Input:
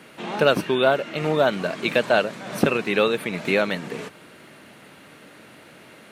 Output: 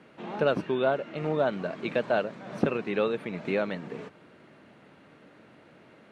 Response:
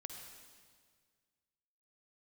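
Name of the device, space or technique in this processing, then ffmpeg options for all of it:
through cloth: -af "lowpass=6800,highshelf=frequency=2000:gain=-11,volume=-5.5dB"

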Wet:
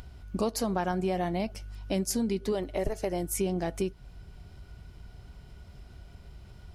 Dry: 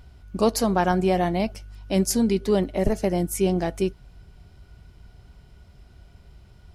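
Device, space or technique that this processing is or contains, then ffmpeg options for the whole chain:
upward and downward compression: -filter_complex "[0:a]asettb=1/sr,asplit=3[link_01][link_02][link_03];[link_01]atrim=end=2.524[link_04];[link_02]atrim=start=2.52:end=3.37,asetpts=PTS-STARTPTS,afade=type=in:duration=0.004:curve=qsin,afade=type=out:start_time=0.846:duration=0.004:curve=qsin,equalizer=frequency=210:width_type=o:width=0.53:gain=-11.5[link_05];[link_03]atrim=start=3.366[link_06];[link_04][link_05]acrossfade=duration=0.004:curve1=hsin:curve2=qsin[link_07];[link_07][link_06]acrossfade=duration=0.004:curve1=qsin:curve2=hsin,acompressor=mode=upward:threshold=-43dB:ratio=2.5,acompressor=threshold=-28dB:ratio=3"

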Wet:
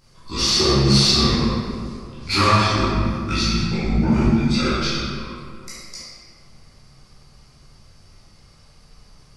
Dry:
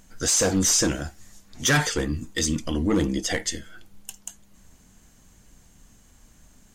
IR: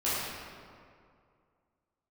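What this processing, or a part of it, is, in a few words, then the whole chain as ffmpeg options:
slowed and reverbed: -filter_complex "[0:a]asetrate=31752,aresample=44100[link_01];[1:a]atrim=start_sample=2205[link_02];[link_01][link_02]afir=irnorm=-1:irlink=0,volume=-4.5dB"

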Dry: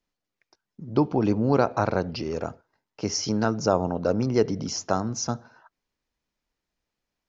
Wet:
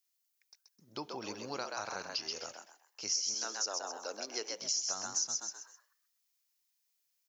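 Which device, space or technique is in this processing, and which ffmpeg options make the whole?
ASMR close-microphone chain: -filter_complex "[0:a]asettb=1/sr,asplit=3[link_01][link_02][link_03];[link_01]atrim=end=3.344[link_04];[link_02]atrim=start=3.34:end=4.62,asetpts=PTS-STARTPTS,afade=type=in:duration=0.004:curve=qsin,afade=type=out:start_time=1.276:duration=0.004:curve=qsin,highpass=frequency=270:width=0.5412,highpass=frequency=270:width=1.3066[link_05];[link_03]atrim=start=4.616[link_06];[link_04][link_05]acrossfade=duration=0.004:curve1=hsin:curve2=qsin[link_07];[link_07][link_06]acrossfade=duration=0.004:curve1=qsin:curve2=hsin,aderivative,asplit=5[link_08][link_09][link_10][link_11][link_12];[link_09]adelay=129,afreqshift=90,volume=-4.5dB[link_13];[link_10]adelay=258,afreqshift=180,volume=-14.4dB[link_14];[link_11]adelay=387,afreqshift=270,volume=-24.3dB[link_15];[link_12]adelay=516,afreqshift=360,volume=-34.2dB[link_16];[link_08][link_13][link_14][link_15][link_16]amix=inputs=5:normalize=0,lowshelf=frequency=110:gain=7.5,acompressor=threshold=-37dB:ratio=10,highshelf=frequency=6500:gain=7.5,volume=3.5dB"

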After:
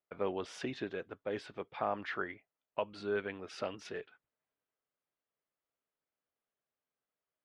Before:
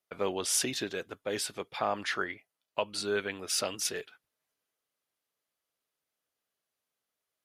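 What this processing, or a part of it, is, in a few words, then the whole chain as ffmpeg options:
phone in a pocket: -af "lowpass=3000,highshelf=frequency=2500:gain=-8,volume=-3dB"

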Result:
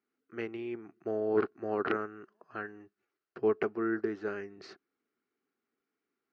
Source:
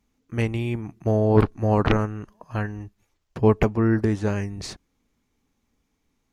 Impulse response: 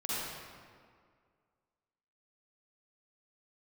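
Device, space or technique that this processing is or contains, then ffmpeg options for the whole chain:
phone earpiece: -af "highpass=370,equalizer=frequency=380:width_type=q:width=4:gain=9,equalizer=frequency=560:width_type=q:width=4:gain=-6,equalizer=frequency=930:width_type=q:width=4:gain=-10,equalizer=frequency=1400:width_type=q:width=4:gain=8,equalizer=frequency=2400:width_type=q:width=4:gain=-4,equalizer=frequency=3500:width_type=q:width=4:gain=-10,lowpass=frequency=4200:width=0.5412,lowpass=frequency=4200:width=1.3066,volume=-8.5dB"

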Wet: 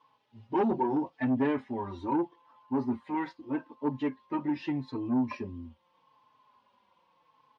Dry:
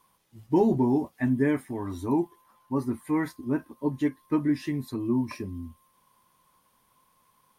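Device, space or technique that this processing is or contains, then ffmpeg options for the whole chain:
barber-pole flanger into a guitar amplifier: -filter_complex "[0:a]asettb=1/sr,asplit=3[link_01][link_02][link_03];[link_01]atrim=end=3.144[link_04];[link_02]atrim=start=3.14:end=3.81,asetpts=PTS-STARTPTS,afade=type=in:duration=0.004:curve=qsin,afade=type=out:start_time=0.666:duration=0.004:curve=qsin,lowshelf=frequency=240:gain=-7.5[link_05];[link_03]atrim=start=3.806[link_06];[link_04][link_05]acrossfade=duration=0.004:curve1=hsin:curve2=qsin[link_07];[link_07][link_06]acrossfade=duration=0.004:curve1=qsin:curve2=hsin,asplit=2[link_08][link_09];[link_09]adelay=4.1,afreqshift=-0.81[link_10];[link_08][link_10]amix=inputs=2:normalize=1,asoftclip=type=tanh:threshold=-23.5dB,highpass=110,equalizer=frequency=170:width_type=q:width=4:gain=-5,equalizer=frequency=260:width_type=q:width=4:gain=3,equalizer=frequency=530:width_type=q:width=4:gain=6,equalizer=frequency=890:width_type=q:width=4:gain=9,equalizer=frequency=2800:width_type=q:width=4:gain=5,lowpass=frequency=4500:width=0.5412,lowpass=frequency=4500:width=1.3066"

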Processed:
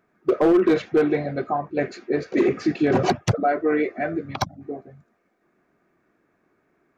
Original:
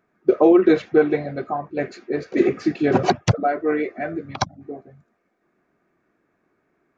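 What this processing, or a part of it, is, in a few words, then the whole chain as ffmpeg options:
clipper into limiter: -af "asoftclip=type=hard:threshold=-9.5dB,alimiter=limit=-13.5dB:level=0:latency=1:release=14,volume=1.5dB"

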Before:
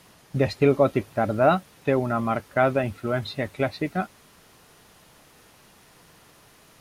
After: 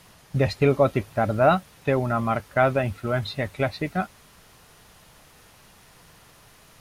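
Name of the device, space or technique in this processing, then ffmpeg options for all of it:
low shelf boost with a cut just above: -af "lowshelf=frequency=83:gain=7,equalizer=frequency=310:width_type=o:width=1.2:gain=-4.5,volume=1.5dB"

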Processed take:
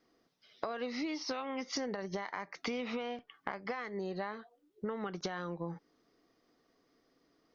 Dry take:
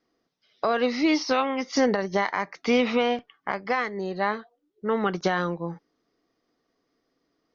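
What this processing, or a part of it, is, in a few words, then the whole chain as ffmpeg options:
serial compression, leveller first: -af "acompressor=threshold=-27dB:ratio=2,acompressor=threshold=-38dB:ratio=5,volume=2dB"

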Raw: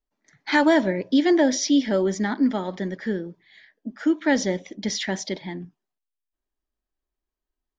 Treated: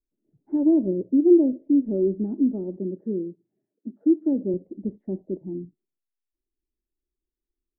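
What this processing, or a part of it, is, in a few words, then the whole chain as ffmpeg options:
under water: -filter_complex "[0:a]lowpass=frequency=430:width=0.5412,lowpass=frequency=430:width=1.3066,equalizer=frequency=350:width_type=o:width=0.29:gain=7,asettb=1/sr,asplit=3[link_01][link_02][link_03];[link_01]atrim=end=2.774[link_04];[link_02]atrim=start=2.77:end=4.54,asetpts=PTS-STARTPTS,afade=type=in:duration=0.004:curve=qsin,afade=type=out:start_time=1.766:duration=0.004:curve=qsin,highpass=140[link_05];[link_03]atrim=start=4.536[link_06];[link_04][link_05]acrossfade=duration=0.004:curve1=hsin:curve2=qsin[link_07];[link_07][link_06]acrossfade=duration=0.004:curve1=qsin:curve2=hsin,volume=-1.5dB"

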